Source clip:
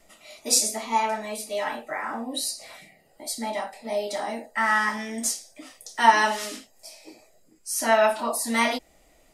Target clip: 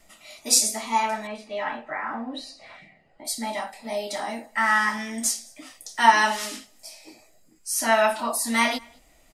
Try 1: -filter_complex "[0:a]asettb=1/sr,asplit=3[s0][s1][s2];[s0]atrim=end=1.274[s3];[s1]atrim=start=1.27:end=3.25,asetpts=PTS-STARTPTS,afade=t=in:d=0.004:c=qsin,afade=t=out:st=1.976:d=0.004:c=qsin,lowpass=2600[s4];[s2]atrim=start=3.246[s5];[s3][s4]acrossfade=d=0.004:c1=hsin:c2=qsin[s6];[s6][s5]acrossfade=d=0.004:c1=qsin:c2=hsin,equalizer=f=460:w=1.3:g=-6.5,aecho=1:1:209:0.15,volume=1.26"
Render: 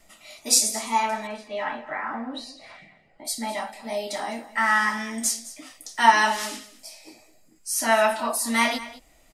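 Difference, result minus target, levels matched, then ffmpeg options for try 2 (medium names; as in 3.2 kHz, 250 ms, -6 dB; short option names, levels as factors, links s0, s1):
echo-to-direct +11 dB
-filter_complex "[0:a]asettb=1/sr,asplit=3[s0][s1][s2];[s0]atrim=end=1.274[s3];[s1]atrim=start=1.27:end=3.25,asetpts=PTS-STARTPTS,afade=t=in:d=0.004:c=qsin,afade=t=out:st=1.976:d=0.004:c=qsin,lowpass=2600[s4];[s2]atrim=start=3.246[s5];[s3][s4]acrossfade=d=0.004:c1=hsin:c2=qsin[s6];[s6][s5]acrossfade=d=0.004:c1=qsin:c2=hsin,equalizer=f=460:w=1.3:g=-6.5,aecho=1:1:209:0.0422,volume=1.26"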